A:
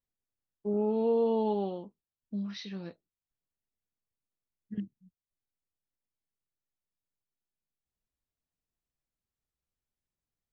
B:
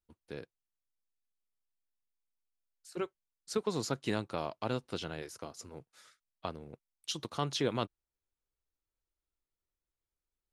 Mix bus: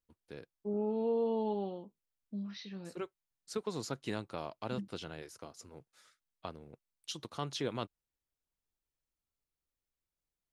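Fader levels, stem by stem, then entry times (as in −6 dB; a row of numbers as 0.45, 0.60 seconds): −5.0, −4.5 decibels; 0.00, 0.00 seconds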